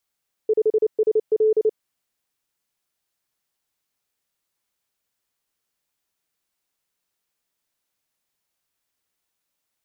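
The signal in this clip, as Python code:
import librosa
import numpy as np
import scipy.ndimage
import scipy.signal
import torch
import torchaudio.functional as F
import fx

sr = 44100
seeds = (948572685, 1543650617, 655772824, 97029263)

y = fx.morse(sr, text='5SL', wpm=29, hz=434.0, level_db=-14.0)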